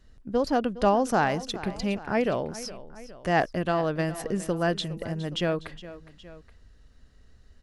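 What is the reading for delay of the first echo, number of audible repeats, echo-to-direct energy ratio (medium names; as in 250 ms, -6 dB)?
413 ms, 2, -14.5 dB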